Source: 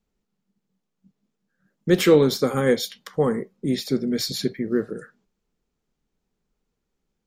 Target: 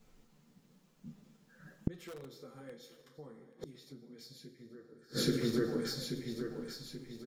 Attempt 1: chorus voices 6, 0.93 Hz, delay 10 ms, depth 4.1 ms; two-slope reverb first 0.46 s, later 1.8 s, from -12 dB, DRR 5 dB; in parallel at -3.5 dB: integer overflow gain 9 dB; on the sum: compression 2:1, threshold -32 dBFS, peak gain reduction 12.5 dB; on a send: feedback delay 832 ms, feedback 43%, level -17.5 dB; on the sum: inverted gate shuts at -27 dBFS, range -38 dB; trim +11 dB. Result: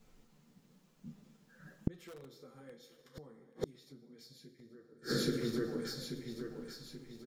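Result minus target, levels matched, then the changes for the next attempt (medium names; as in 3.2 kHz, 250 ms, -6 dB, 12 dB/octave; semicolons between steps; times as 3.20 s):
compression: peak gain reduction +4 dB
change: compression 2:1, threshold -24.5 dBFS, peak gain reduction 9 dB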